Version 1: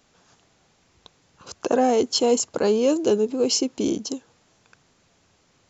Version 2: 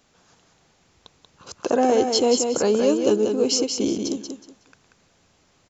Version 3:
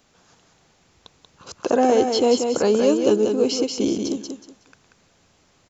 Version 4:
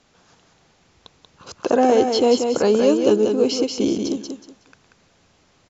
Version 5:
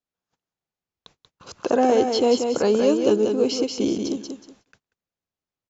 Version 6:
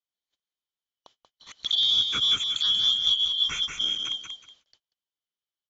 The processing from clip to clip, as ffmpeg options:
-af "aecho=1:1:185|370|555:0.531|0.122|0.0281"
-filter_complex "[0:a]acrossover=split=4400[s0][s1];[s1]acompressor=threshold=0.02:ratio=4:attack=1:release=60[s2];[s0][s2]amix=inputs=2:normalize=0,volume=1.19"
-af "lowpass=6700,volume=1.19"
-af "agate=range=0.0251:threshold=0.00316:ratio=16:detection=peak,volume=0.75"
-af "afftfilt=real='real(if(lt(b,272),68*(eq(floor(b/68),0)*2+eq(floor(b/68),1)*3+eq(floor(b/68),2)*0+eq(floor(b/68),3)*1)+mod(b,68),b),0)':imag='imag(if(lt(b,272),68*(eq(floor(b/68),0)*2+eq(floor(b/68),1)*3+eq(floor(b/68),2)*0+eq(floor(b/68),3)*1)+mod(b,68),b),0)':win_size=2048:overlap=0.75,aresample=16000,aresample=44100,volume=0.562"

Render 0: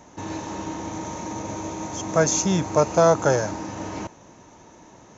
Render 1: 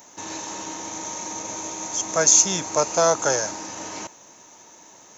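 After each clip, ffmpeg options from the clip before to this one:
-af "aemphasis=mode=production:type=riaa,volume=0.891"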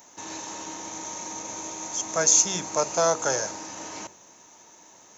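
-af "bandreject=f=48.21:t=h:w=4,bandreject=f=96.42:t=h:w=4,bandreject=f=144.63:t=h:w=4,bandreject=f=192.84:t=h:w=4,bandreject=f=241.05:t=h:w=4,bandreject=f=289.26:t=h:w=4,bandreject=f=337.47:t=h:w=4,bandreject=f=385.68:t=h:w=4,bandreject=f=433.89:t=h:w=4,bandreject=f=482.1:t=h:w=4,bandreject=f=530.31:t=h:w=4,bandreject=f=578.52:t=h:w=4,bandreject=f=626.73:t=h:w=4,volume=0.668"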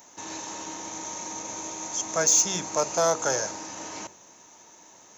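-af "asoftclip=type=tanh:threshold=0.282"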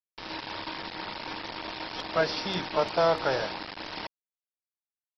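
-af "aresample=11025,acrusher=bits=5:mix=0:aa=0.000001,aresample=44100" -ar 44100 -c:a aac -b:a 32k

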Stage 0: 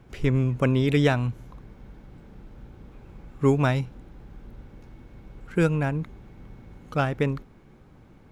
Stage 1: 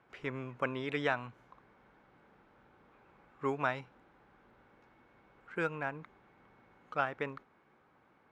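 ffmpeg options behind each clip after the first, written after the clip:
-af "bandpass=f=1300:t=q:w=0.94:csg=0,volume=0.668"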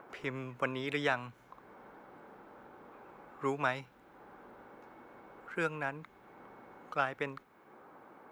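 -filter_complex "[0:a]aemphasis=mode=production:type=50kf,acrossover=split=220|1400[s0][s1][s2];[s1]acompressor=mode=upward:threshold=0.00708:ratio=2.5[s3];[s0][s3][s2]amix=inputs=3:normalize=0"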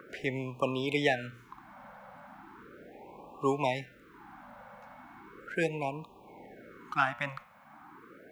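-af "bandreject=f=119.1:t=h:w=4,bandreject=f=238.2:t=h:w=4,bandreject=f=357.3:t=h:w=4,bandreject=f=476.4:t=h:w=4,bandreject=f=595.5:t=h:w=4,bandreject=f=714.6:t=h:w=4,bandreject=f=833.7:t=h:w=4,bandreject=f=952.8:t=h:w=4,bandreject=f=1071.9:t=h:w=4,bandreject=f=1191:t=h:w=4,bandreject=f=1310.1:t=h:w=4,bandreject=f=1429.2:t=h:w=4,bandreject=f=1548.3:t=h:w=4,bandreject=f=1667.4:t=h:w=4,bandreject=f=1786.5:t=h:w=4,bandreject=f=1905.6:t=h:w=4,bandreject=f=2024.7:t=h:w=4,bandreject=f=2143.8:t=h:w=4,bandreject=f=2262.9:t=h:w=4,bandreject=f=2382:t=h:w=4,bandreject=f=2501.1:t=h:w=4,bandreject=f=2620.2:t=h:w=4,bandreject=f=2739.3:t=h:w=4,bandreject=f=2858.4:t=h:w=4,bandreject=f=2977.5:t=h:w=4,bandreject=f=3096.6:t=h:w=4,bandreject=f=3215.7:t=h:w=4,bandreject=f=3334.8:t=h:w=4,bandreject=f=3453.9:t=h:w=4,bandreject=f=3573:t=h:w=4,bandreject=f=3692.1:t=h:w=4,afftfilt=real='re*(1-between(b*sr/1024,350*pow(1700/350,0.5+0.5*sin(2*PI*0.37*pts/sr))/1.41,350*pow(1700/350,0.5+0.5*sin(2*PI*0.37*pts/sr))*1.41))':imag='im*(1-between(b*sr/1024,350*pow(1700/350,0.5+0.5*sin(2*PI*0.37*pts/sr))/1.41,350*pow(1700/350,0.5+0.5*sin(2*PI*0.37*pts/sr))*1.41))':win_size=1024:overlap=0.75,volume=1.88"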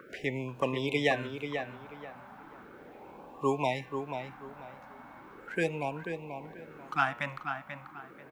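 -filter_complex "[0:a]asplit=2[s0][s1];[s1]adelay=487,lowpass=f=3000:p=1,volume=0.447,asplit=2[s2][s3];[s3]adelay=487,lowpass=f=3000:p=1,volume=0.28,asplit=2[s4][s5];[s5]adelay=487,lowpass=f=3000:p=1,volume=0.28[s6];[s0][s2][s4][s6]amix=inputs=4:normalize=0"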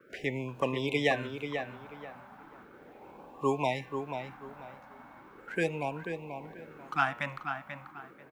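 -af "agate=range=0.0224:threshold=0.00447:ratio=3:detection=peak"

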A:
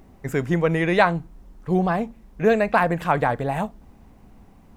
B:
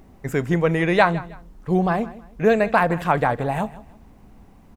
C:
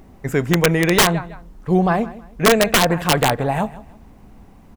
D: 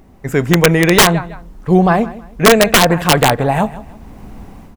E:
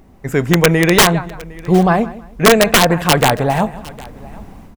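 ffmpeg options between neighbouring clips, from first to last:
-af "aecho=1:1:159|318:0.126|0.0352,volume=1.12"
-af "aeval=exprs='(mod(3.16*val(0)+1,2)-1)/3.16':c=same,volume=1.5"
-af "dynaudnorm=f=210:g=3:m=3.55"
-af "aecho=1:1:758:0.0794,volume=0.891"

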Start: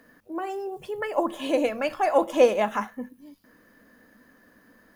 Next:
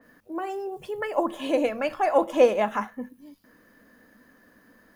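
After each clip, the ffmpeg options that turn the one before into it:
-af "adynamicequalizer=threshold=0.00631:dfrequency=3000:dqfactor=0.7:tfrequency=3000:tqfactor=0.7:attack=5:release=100:ratio=0.375:range=2:mode=cutabove:tftype=highshelf"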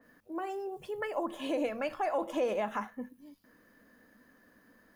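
-af "alimiter=limit=0.133:level=0:latency=1:release=73,volume=0.531"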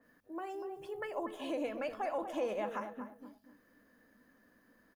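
-filter_complex "[0:a]asplit=2[s0][s1];[s1]adelay=241,lowpass=f=1400:p=1,volume=0.398,asplit=2[s2][s3];[s3]adelay=241,lowpass=f=1400:p=1,volume=0.29,asplit=2[s4][s5];[s5]adelay=241,lowpass=f=1400:p=1,volume=0.29[s6];[s0][s2][s4][s6]amix=inputs=4:normalize=0,volume=0.562"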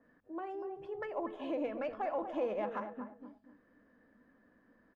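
-af "adynamicsmooth=sensitivity=1.5:basefreq=2400,volume=1.12"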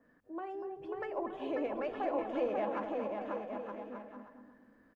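-af "aecho=1:1:540|918|1183|1368|1497:0.631|0.398|0.251|0.158|0.1"

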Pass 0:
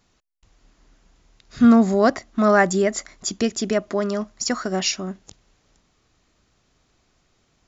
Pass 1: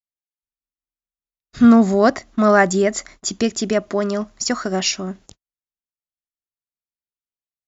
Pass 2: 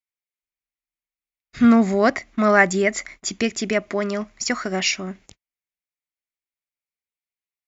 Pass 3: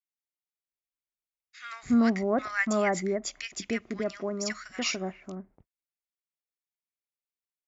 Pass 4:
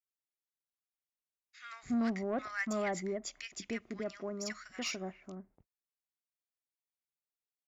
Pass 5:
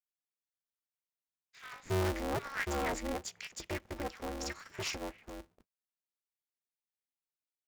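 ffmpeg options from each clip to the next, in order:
-af "agate=range=0.00398:threshold=0.00562:ratio=16:detection=peak,volume=1.33"
-af "equalizer=f=2200:w=2.4:g=12,volume=0.668"
-filter_complex "[0:a]acrossover=split=1300[s0][s1];[s0]adelay=290[s2];[s2][s1]amix=inputs=2:normalize=0,volume=0.376"
-af "asoftclip=type=tanh:threshold=0.112,volume=0.447"
-af "aeval=exprs='val(0)*sgn(sin(2*PI*140*n/s))':c=same"

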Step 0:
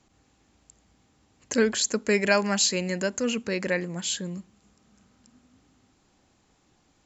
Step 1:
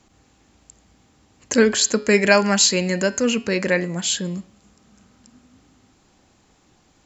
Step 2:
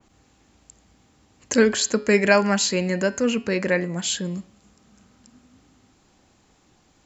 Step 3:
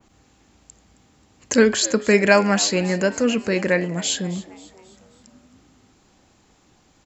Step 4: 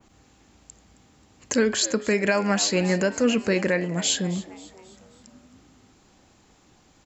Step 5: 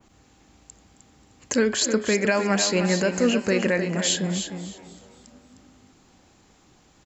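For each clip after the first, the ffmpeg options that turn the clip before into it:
-af "bandreject=f=140.6:t=h:w=4,bandreject=f=281.2:t=h:w=4,bandreject=f=421.8:t=h:w=4,bandreject=f=562.4:t=h:w=4,bandreject=f=703:t=h:w=4,bandreject=f=843.6:t=h:w=4,bandreject=f=984.2:t=h:w=4,bandreject=f=1124.8:t=h:w=4,bandreject=f=1265.4:t=h:w=4,bandreject=f=1406:t=h:w=4,bandreject=f=1546.6:t=h:w=4,bandreject=f=1687.2:t=h:w=4,bandreject=f=1827.8:t=h:w=4,bandreject=f=1968.4:t=h:w=4,bandreject=f=2109:t=h:w=4,bandreject=f=2249.6:t=h:w=4,bandreject=f=2390.2:t=h:w=4,bandreject=f=2530.8:t=h:w=4,bandreject=f=2671.4:t=h:w=4,bandreject=f=2812:t=h:w=4,bandreject=f=2952.6:t=h:w=4,bandreject=f=3093.2:t=h:w=4,bandreject=f=3233.8:t=h:w=4,bandreject=f=3374.4:t=h:w=4,bandreject=f=3515:t=h:w=4,bandreject=f=3655.6:t=h:w=4,bandreject=f=3796.2:t=h:w=4,bandreject=f=3936.8:t=h:w=4,bandreject=f=4077.4:t=h:w=4,bandreject=f=4218:t=h:w=4,bandreject=f=4358.6:t=h:w=4,bandreject=f=4499.2:t=h:w=4,bandreject=f=4639.8:t=h:w=4,bandreject=f=4780.4:t=h:w=4,bandreject=f=4921:t=h:w=4,bandreject=f=5061.6:t=h:w=4,bandreject=f=5202.2:t=h:w=4,volume=2.24"
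-af "adynamicequalizer=threshold=0.0178:dfrequency=2700:dqfactor=0.7:tfrequency=2700:tqfactor=0.7:attack=5:release=100:ratio=0.375:range=3.5:mode=cutabove:tftype=highshelf,volume=0.841"
-filter_complex "[0:a]asplit=5[s0][s1][s2][s3][s4];[s1]adelay=267,afreqshift=100,volume=0.112[s5];[s2]adelay=534,afreqshift=200,volume=0.0537[s6];[s3]adelay=801,afreqshift=300,volume=0.0257[s7];[s4]adelay=1068,afreqshift=400,volume=0.0124[s8];[s0][s5][s6][s7][s8]amix=inputs=5:normalize=0,volume=1.26"
-af "alimiter=limit=0.266:level=0:latency=1:release=306"
-af "aecho=1:1:307|614|921:0.376|0.0714|0.0136"

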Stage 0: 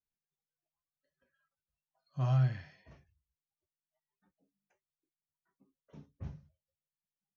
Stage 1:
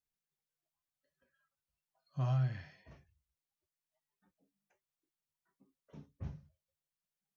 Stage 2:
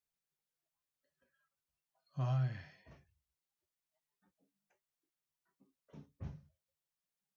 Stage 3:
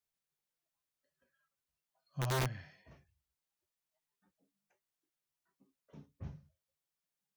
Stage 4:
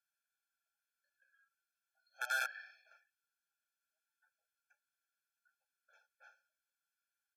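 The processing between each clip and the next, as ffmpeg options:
-af "acompressor=threshold=0.0251:ratio=2"
-af "lowshelf=f=61:g=-5.5,volume=0.891"
-af "aeval=exprs='(mod(26.6*val(0)+1,2)-1)/26.6':c=same"
-af "aresample=32000,aresample=44100,highpass=f=1300:t=q:w=8.9,afftfilt=real='re*eq(mod(floor(b*sr/1024/450),2),1)':imag='im*eq(mod(floor(b*sr/1024/450),2),1)':win_size=1024:overlap=0.75"

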